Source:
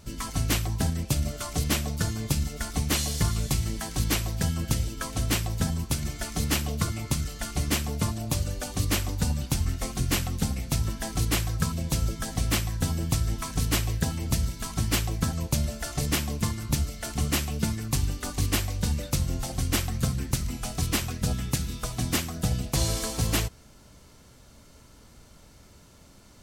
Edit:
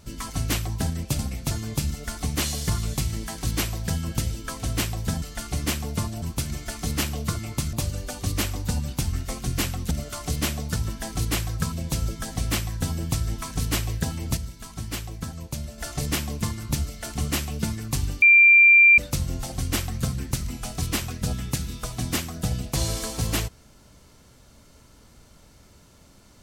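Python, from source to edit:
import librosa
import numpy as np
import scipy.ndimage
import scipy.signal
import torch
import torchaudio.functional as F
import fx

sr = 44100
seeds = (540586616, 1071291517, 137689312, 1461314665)

y = fx.edit(x, sr, fx.swap(start_s=1.19, length_s=0.85, other_s=10.44, other_length_s=0.32),
    fx.move(start_s=7.26, length_s=1.0, to_s=5.75),
    fx.clip_gain(start_s=14.37, length_s=1.41, db=-6.5),
    fx.bleep(start_s=18.22, length_s=0.76, hz=2370.0, db=-10.0), tone=tone)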